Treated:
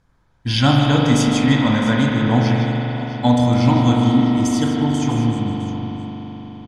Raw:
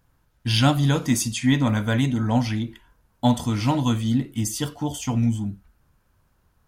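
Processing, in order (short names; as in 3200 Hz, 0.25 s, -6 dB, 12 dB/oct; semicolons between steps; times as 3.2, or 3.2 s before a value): LPF 6600 Hz 12 dB/oct; notch 2800 Hz, Q 12; tapped delay 0.155/0.66 s -10/-15.5 dB; reverb RT60 5.1 s, pre-delay 41 ms, DRR -2 dB; gain +2.5 dB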